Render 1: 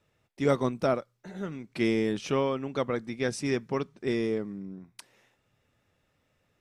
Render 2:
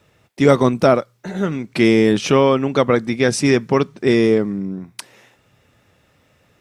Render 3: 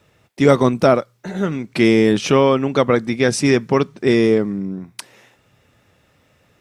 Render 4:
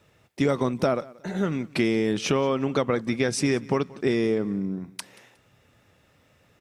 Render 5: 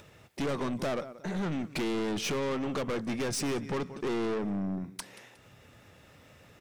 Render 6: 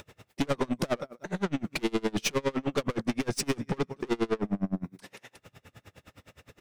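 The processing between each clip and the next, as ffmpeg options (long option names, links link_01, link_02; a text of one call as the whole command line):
ffmpeg -i in.wav -filter_complex "[0:a]highpass=43,asplit=2[link_01][link_02];[link_02]alimiter=limit=-20dB:level=0:latency=1:release=78,volume=2.5dB[link_03];[link_01][link_03]amix=inputs=2:normalize=0,volume=7.5dB" out.wav
ffmpeg -i in.wav -af anull out.wav
ffmpeg -i in.wav -af "acompressor=threshold=-16dB:ratio=6,aecho=1:1:181|362:0.0794|0.0222,volume=-3.5dB" out.wav
ffmpeg -i in.wav -af "aeval=exprs='(tanh(31.6*val(0)+0.2)-tanh(0.2))/31.6':channel_layout=same,acompressor=mode=upward:threshold=-50dB:ratio=2.5,volume=1dB" out.wav
ffmpeg -i in.wav -af "aeval=exprs='val(0)*pow(10,-31*(0.5-0.5*cos(2*PI*9.7*n/s))/20)':channel_layout=same,volume=8dB" out.wav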